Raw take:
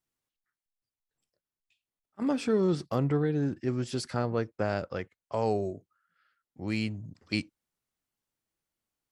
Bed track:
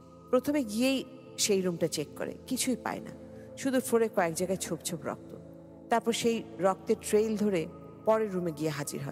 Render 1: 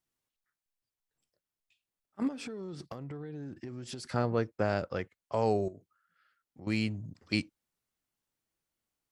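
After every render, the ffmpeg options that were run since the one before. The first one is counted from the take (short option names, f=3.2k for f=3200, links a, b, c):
-filter_complex "[0:a]asplit=3[a][b][c];[a]afade=t=out:st=2.27:d=0.02[d];[b]acompressor=threshold=-37dB:ratio=16:attack=3.2:release=140:knee=1:detection=peak,afade=t=in:st=2.27:d=0.02,afade=t=out:st=4.09:d=0.02[e];[c]afade=t=in:st=4.09:d=0.02[f];[d][e][f]amix=inputs=3:normalize=0,asettb=1/sr,asplit=3[g][h][i];[g]atrim=end=5.684[j];[h]atrim=start=5.68:end=6.67,asetpts=PTS-STARTPTS,afade=t=in:d=0.004:c=qsin,afade=t=out:st=0.986:d=0.004:c=qsin,acompressor=threshold=-48dB:ratio=2.5:attack=3.2:release=140:knee=1:detection=peak[k];[i]atrim=start=6.666[l];[j][k]acrossfade=d=0.004:c1=hsin:c2=qsin[m];[m][l]acrossfade=d=0.004:c1=qsin:c2=hsin"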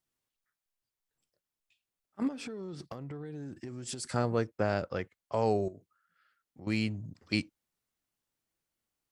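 -filter_complex "[0:a]asettb=1/sr,asplit=3[a][b][c];[a]atrim=end=3.254[d];[b]atrim=start=3.25:end=4.47,asetpts=PTS-STARTPTS,afade=t=in:d=0.004:c=qsin,afade=t=out:st=1.216:d=0.004:c=qsin,equalizer=f=8.3k:w=1.5:g=11.5[e];[c]atrim=start=4.466[f];[d][e]acrossfade=d=0.004:c1=hsin:c2=qsin[g];[g][f]acrossfade=d=0.004:c1=qsin:c2=hsin"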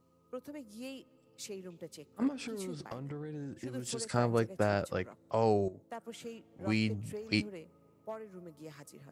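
-filter_complex "[1:a]volume=-17dB[a];[0:a][a]amix=inputs=2:normalize=0"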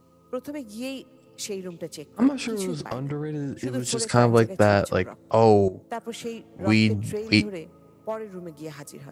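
-af "volume=11.5dB"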